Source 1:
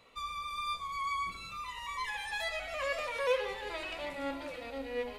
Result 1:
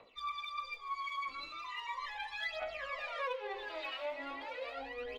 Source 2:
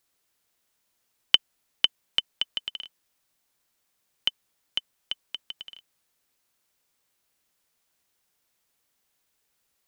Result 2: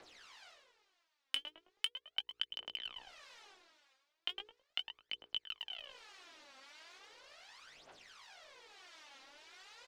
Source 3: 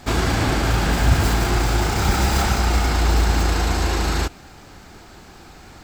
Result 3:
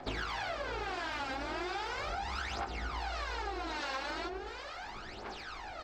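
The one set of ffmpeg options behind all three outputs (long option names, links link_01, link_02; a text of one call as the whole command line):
ffmpeg -i in.wav -filter_complex "[0:a]acrossover=split=680[link_01][link_02];[link_01]aeval=exprs='val(0)*(1-0.5/2+0.5/2*cos(2*PI*1.4*n/s))':channel_layout=same[link_03];[link_02]aeval=exprs='val(0)*(1-0.5/2-0.5/2*cos(2*PI*1.4*n/s))':channel_layout=same[link_04];[link_03][link_04]amix=inputs=2:normalize=0,lowpass=7100,acrossover=split=360 5300:gain=0.0794 1 0.1[link_05][link_06][link_07];[link_05][link_06][link_07]amix=inputs=3:normalize=0,bandreject=frequency=60:width_type=h:width=6,bandreject=frequency=120:width_type=h:width=6,bandreject=frequency=180:width_type=h:width=6,bandreject=frequency=240:width_type=h:width=6,bandreject=frequency=300:width_type=h:width=6,bandreject=frequency=360:width_type=h:width=6,bandreject=frequency=420:width_type=h:width=6,bandreject=frequency=480:width_type=h:width=6,asplit=2[link_08][link_09];[link_09]adelay=19,volume=-4dB[link_10];[link_08][link_10]amix=inputs=2:normalize=0,asplit=2[link_11][link_12];[link_12]adelay=107,lowpass=frequency=950:poles=1,volume=-5.5dB,asplit=2[link_13][link_14];[link_14]adelay=107,lowpass=frequency=950:poles=1,volume=0.38,asplit=2[link_15][link_16];[link_16]adelay=107,lowpass=frequency=950:poles=1,volume=0.38,asplit=2[link_17][link_18];[link_18]adelay=107,lowpass=frequency=950:poles=1,volume=0.38,asplit=2[link_19][link_20];[link_20]adelay=107,lowpass=frequency=950:poles=1,volume=0.38[link_21];[link_13][link_15][link_17][link_19][link_21]amix=inputs=5:normalize=0[link_22];[link_11][link_22]amix=inputs=2:normalize=0,asoftclip=type=hard:threshold=-11.5dB,aphaser=in_gain=1:out_gain=1:delay=3.8:decay=0.74:speed=0.38:type=triangular,areverse,acompressor=mode=upward:threshold=-32dB:ratio=2.5,areverse,lowshelf=frequency=150:gain=6,acompressor=threshold=-29dB:ratio=16,volume=-5dB" out.wav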